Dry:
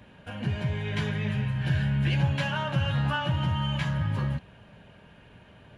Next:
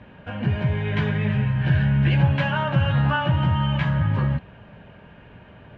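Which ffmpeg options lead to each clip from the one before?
ffmpeg -i in.wav -af "lowpass=2500,volume=6.5dB" out.wav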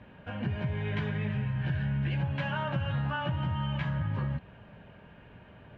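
ffmpeg -i in.wav -af "acompressor=threshold=-22dB:ratio=4,volume=-6dB" out.wav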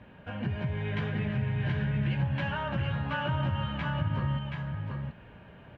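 ffmpeg -i in.wav -af "aecho=1:1:727:0.631" out.wav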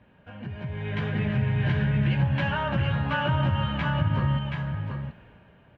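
ffmpeg -i in.wav -af "dynaudnorm=framelen=200:gausssize=9:maxgain=11.5dB,volume=-6dB" out.wav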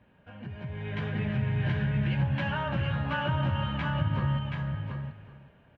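ffmpeg -i in.wav -af "aecho=1:1:374:0.188,volume=-4dB" out.wav

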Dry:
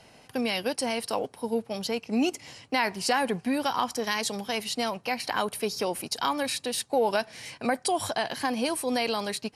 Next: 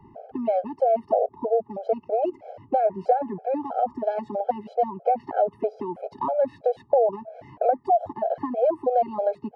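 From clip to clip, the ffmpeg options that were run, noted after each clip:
ffmpeg -i in.wav -filter_complex "[0:a]lowpass=frequency=660:width_type=q:width=4.9,acrossover=split=190|450[link_01][link_02][link_03];[link_01]acompressor=threshold=-53dB:ratio=4[link_04];[link_02]acompressor=threshold=-38dB:ratio=4[link_05];[link_03]acompressor=threshold=-28dB:ratio=4[link_06];[link_04][link_05][link_06]amix=inputs=3:normalize=0,afftfilt=real='re*gt(sin(2*PI*3.1*pts/sr)*(1-2*mod(floor(b*sr/1024/430),2)),0)':imag='im*gt(sin(2*PI*3.1*pts/sr)*(1-2*mod(floor(b*sr/1024/430),2)),0)':win_size=1024:overlap=0.75,volume=8dB" out.wav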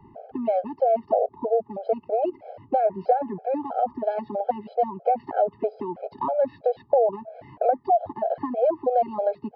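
ffmpeg -i in.wav -af "aresample=11025,aresample=44100" out.wav

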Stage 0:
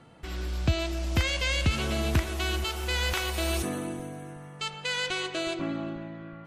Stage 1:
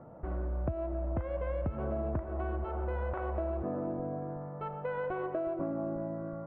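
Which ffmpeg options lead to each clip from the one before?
ffmpeg -i in.wav -af "lowpass=frequency=1200:width=0.5412,lowpass=frequency=1200:width=1.3066,equalizer=frequency=590:width_type=o:width=0.35:gain=11,acompressor=threshold=-33dB:ratio=6,volume=2dB" out.wav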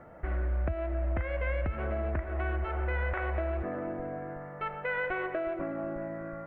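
ffmpeg -i in.wav -af "equalizer=frequency=125:width_type=o:width=1:gain=-12,equalizer=frequency=250:width_type=o:width=1:gain=-7,equalizer=frequency=500:width_type=o:width=1:gain=-5,equalizer=frequency=1000:width_type=o:width=1:gain=-8,equalizer=frequency=2000:width_type=o:width=1:gain=12,volume=7.5dB" out.wav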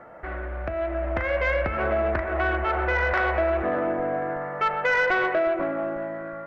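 ffmpeg -i in.wav -filter_complex "[0:a]bandreject=frequency=77.16:width_type=h:width=4,bandreject=frequency=154.32:width_type=h:width=4,bandreject=frequency=231.48:width_type=h:width=4,bandreject=frequency=308.64:width_type=h:width=4,bandreject=frequency=385.8:width_type=h:width=4,bandreject=frequency=462.96:width_type=h:width=4,bandreject=frequency=540.12:width_type=h:width=4,bandreject=frequency=617.28:width_type=h:width=4,bandreject=frequency=694.44:width_type=h:width=4,bandreject=frequency=771.6:width_type=h:width=4,bandreject=frequency=848.76:width_type=h:width=4,bandreject=frequency=925.92:width_type=h:width=4,bandreject=frequency=1003.08:width_type=h:width=4,bandreject=frequency=1080.24:width_type=h:width=4,bandreject=frequency=1157.4:width_type=h:width=4,bandreject=frequency=1234.56:width_type=h:width=4,bandreject=frequency=1311.72:width_type=h:width=4,bandreject=frequency=1388.88:width_type=h:width=4,bandreject=frequency=1466.04:width_type=h:width=4,bandreject=frequency=1543.2:width_type=h:width=4,bandreject=frequency=1620.36:width_type=h:width=4,bandreject=frequency=1697.52:width_type=h:width=4,bandreject=frequency=1774.68:width_type=h:width=4,bandreject=frequency=1851.84:width_type=h:width=4,bandreject=frequency=1929:width_type=h:width=4,bandreject=frequency=2006.16:width_type=h:width=4,bandreject=frequency=2083.32:width_type=h:width=4,bandreject=frequency=2160.48:width_type=h:width=4,bandreject=frequency=2237.64:width_type=h:width=4,bandreject=frequency=2314.8:width_type=h:width=4,bandreject=frequency=2391.96:width_type=h:width=4,bandreject=frequency=2469.12:width_type=h:width=4,bandreject=frequency=2546.28:width_type=h:width=4,asplit=2[link_01][link_02];[link_02]highpass=frequency=720:poles=1,volume=15dB,asoftclip=type=tanh:threshold=-17.5dB[link_03];[link_01][link_03]amix=inputs=2:normalize=0,lowpass=frequency=2600:poles=1,volume=-6dB,dynaudnorm=framelen=210:gausssize=9:maxgain=6dB" out.wav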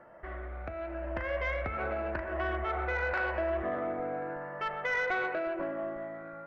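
ffmpeg -i in.wav -af "afftfilt=real='re*pow(10,6/40*sin(2*PI*(1.3*log(max(b,1)*sr/1024/100)/log(2)-(0.89)*(pts-256)/sr)))':imag='im*pow(10,6/40*sin(2*PI*(1.3*log(max(b,1)*sr/1024/100)/log(2)-(0.89)*(pts-256)/sr)))':win_size=1024:overlap=0.75,volume=-9dB" out.wav

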